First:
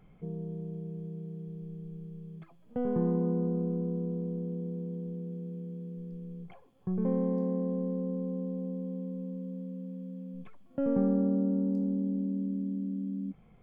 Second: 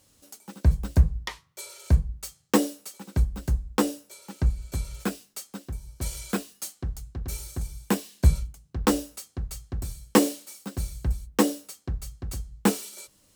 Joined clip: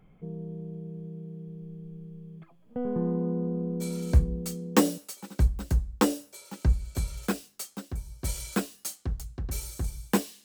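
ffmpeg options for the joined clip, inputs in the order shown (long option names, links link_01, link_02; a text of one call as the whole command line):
ffmpeg -i cue0.wav -i cue1.wav -filter_complex "[0:a]apad=whole_dur=10.44,atrim=end=10.44,atrim=end=4.98,asetpts=PTS-STARTPTS[link_01];[1:a]atrim=start=1.57:end=8.21,asetpts=PTS-STARTPTS[link_02];[link_01][link_02]acrossfade=duration=1.18:curve1=log:curve2=log" out.wav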